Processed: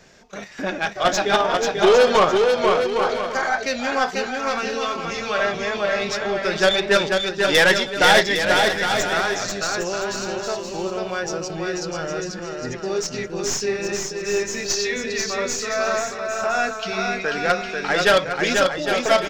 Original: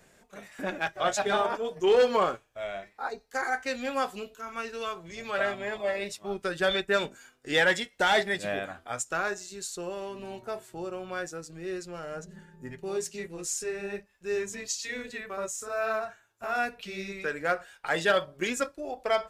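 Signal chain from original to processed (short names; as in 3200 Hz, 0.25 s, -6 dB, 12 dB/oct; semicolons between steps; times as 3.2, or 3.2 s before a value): tracing distortion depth 0.042 ms; resonant high shelf 7400 Hz -10.5 dB, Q 3; in parallel at +2.5 dB: level quantiser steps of 24 dB; on the sum: soft clip -16.5 dBFS, distortion -11 dB; bouncing-ball echo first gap 0.49 s, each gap 0.65×, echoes 5; gain +6 dB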